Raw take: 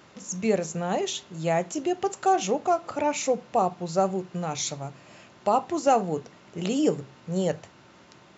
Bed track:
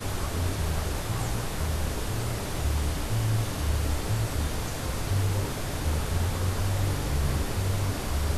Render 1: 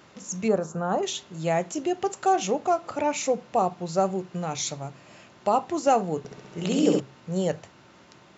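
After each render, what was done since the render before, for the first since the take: 0.48–1.03 resonant high shelf 1700 Hz -8 dB, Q 3; 6.18–7 flutter echo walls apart 11.4 m, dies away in 1.2 s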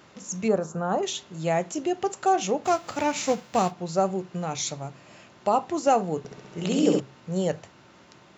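2.64–3.7 spectral whitening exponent 0.6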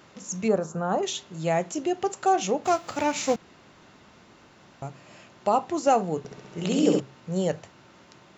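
3.36–4.82 room tone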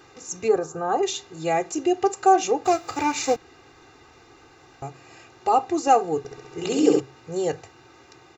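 notch 3200 Hz, Q 10; comb 2.5 ms, depth 95%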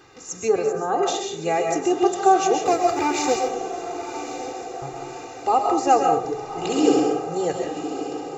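on a send: diffused feedback echo 1.105 s, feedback 52%, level -10.5 dB; on the sum: digital reverb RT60 0.54 s, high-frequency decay 0.6×, pre-delay 90 ms, DRR 2 dB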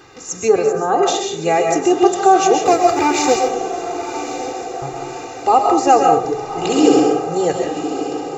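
gain +6.5 dB; limiter -1 dBFS, peak gain reduction 2.5 dB

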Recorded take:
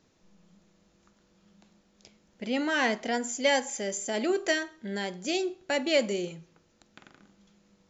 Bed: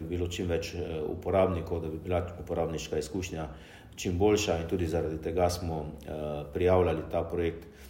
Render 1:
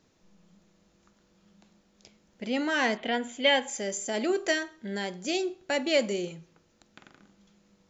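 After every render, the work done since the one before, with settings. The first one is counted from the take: 2.97–3.68 resonant high shelf 4300 Hz -8.5 dB, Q 3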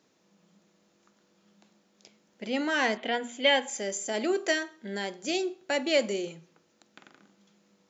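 HPF 190 Hz 12 dB/oct; notches 60/120/180/240 Hz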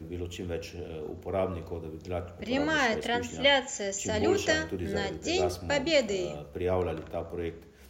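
add bed -4.5 dB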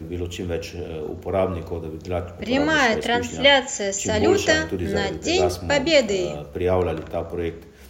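gain +8 dB

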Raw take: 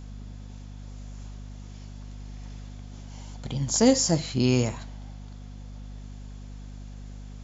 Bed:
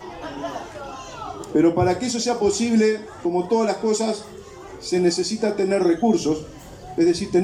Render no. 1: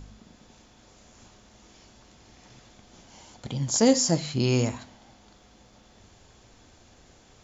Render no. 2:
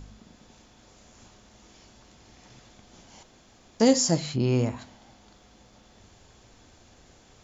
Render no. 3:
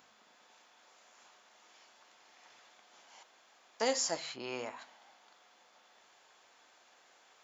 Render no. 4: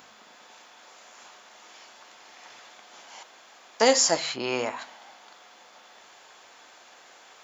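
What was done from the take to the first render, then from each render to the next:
de-hum 50 Hz, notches 5
3.23–3.8 room tone; 4.35–4.77 LPF 1200 Hz -> 2000 Hz 6 dB/oct
HPF 900 Hz 12 dB/oct; bell 6600 Hz -8.5 dB 2.1 oct
gain +12 dB

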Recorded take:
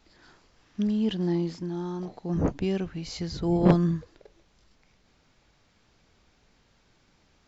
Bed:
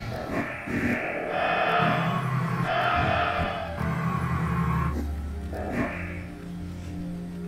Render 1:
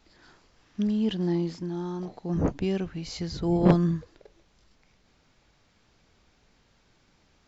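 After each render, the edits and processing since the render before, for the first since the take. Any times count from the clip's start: nothing audible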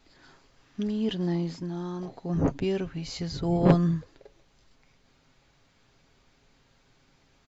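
notch 5500 Hz, Q 20; comb 7.4 ms, depth 40%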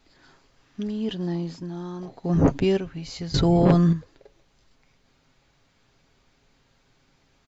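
1.09–1.68 notch 2100 Hz; 2.24–2.77 gain +6.5 dB; 3.34–3.93 fast leveller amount 70%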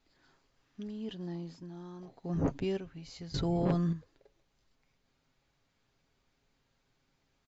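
gain -12 dB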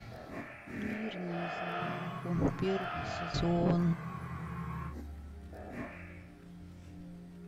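add bed -14.5 dB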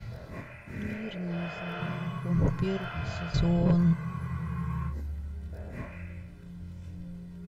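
resonant low shelf 270 Hz +6.5 dB, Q 1.5; comb 2 ms, depth 58%

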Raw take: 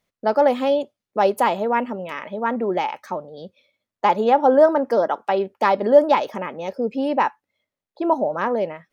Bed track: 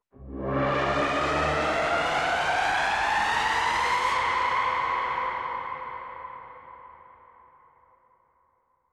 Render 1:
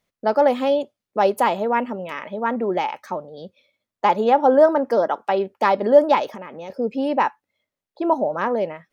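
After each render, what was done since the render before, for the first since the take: 6.28–6.7 compressor 3:1, threshold -32 dBFS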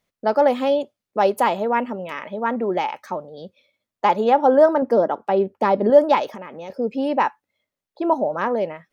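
4.82–5.9 tilt shelf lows +6.5 dB, about 690 Hz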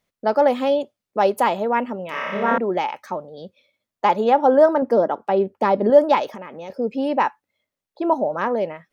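2.1–2.58 flutter echo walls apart 5.1 m, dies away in 1.5 s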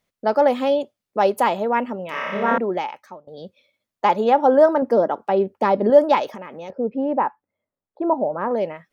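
2.62–3.27 fade out, to -21.5 dB; 6.7–8.51 LPF 1200 Hz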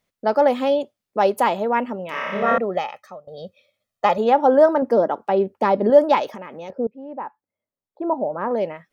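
2.42–4.18 comb 1.6 ms; 6.87–8.6 fade in, from -18 dB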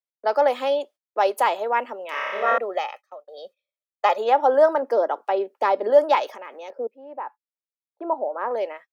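gate -40 dBFS, range -24 dB; Bessel high-pass 530 Hz, order 8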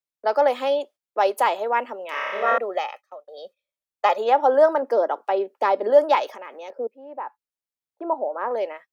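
low shelf 160 Hz +4 dB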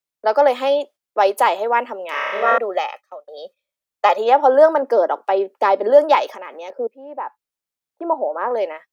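gain +4.5 dB; limiter -2 dBFS, peak gain reduction 1 dB

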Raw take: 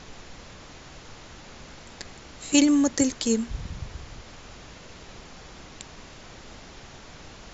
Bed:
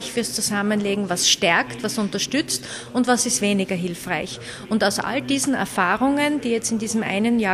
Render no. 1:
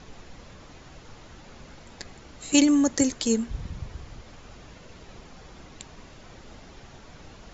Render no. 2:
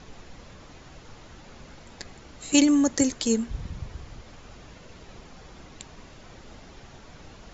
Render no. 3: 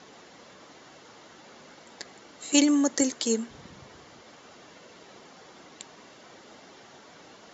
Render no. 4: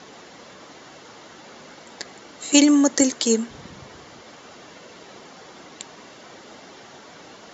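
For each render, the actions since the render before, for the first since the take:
denoiser 6 dB, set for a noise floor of -46 dBFS
nothing audible
HPF 270 Hz 12 dB/oct; notch 2500 Hz, Q 15
gain +6.5 dB; limiter -2 dBFS, peak gain reduction 1.5 dB

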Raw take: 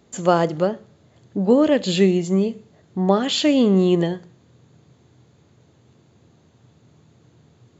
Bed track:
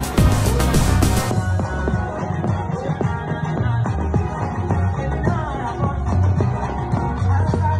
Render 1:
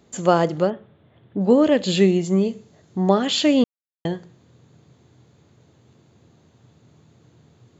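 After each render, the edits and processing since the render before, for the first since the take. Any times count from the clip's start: 0.7–1.41 elliptic low-pass 3500 Hz; 2.45–3.14 bell 6300 Hz +5.5 dB 1 oct; 3.64–4.05 mute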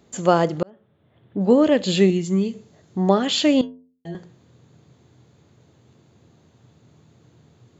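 0.63–1.42 fade in; 2.1–2.54 bell 660 Hz -12.5 dB 1 oct; 3.61–4.15 metallic resonator 82 Hz, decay 0.53 s, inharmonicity 0.008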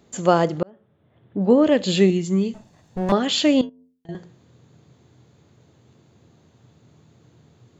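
0.59–1.67 high shelf 5200 Hz -11.5 dB; 2.54–3.12 minimum comb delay 1.1 ms; 3.69–4.09 compressor 10:1, threshold -47 dBFS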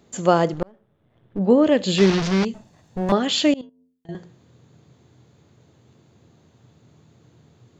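0.53–1.39 half-wave gain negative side -7 dB; 1.98–2.45 delta modulation 32 kbps, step -17 dBFS; 3.54–4.13 fade in, from -24 dB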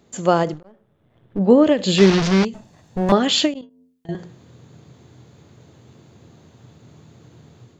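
AGC gain up to 7 dB; ending taper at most 190 dB/s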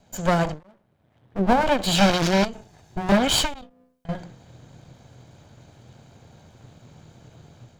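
minimum comb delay 1.3 ms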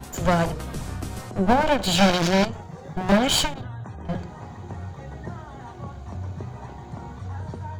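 add bed track -16 dB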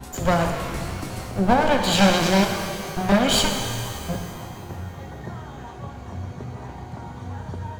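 shimmer reverb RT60 2.2 s, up +12 st, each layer -8 dB, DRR 4.5 dB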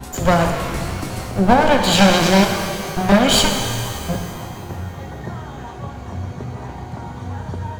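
gain +5 dB; limiter -1 dBFS, peak gain reduction 2 dB

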